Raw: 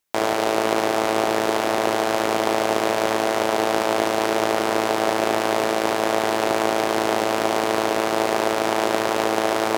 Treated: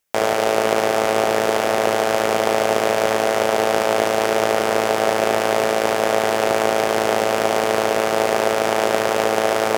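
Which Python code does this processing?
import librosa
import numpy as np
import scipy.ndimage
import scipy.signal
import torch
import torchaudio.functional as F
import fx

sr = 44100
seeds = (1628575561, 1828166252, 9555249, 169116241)

y = fx.graphic_eq_31(x, sr, hz=(315, 500, 1000, 4000), db=(-8, 4, -4, -4))
y = F.gain(torch.from_numpy(y), 3.0).numpy()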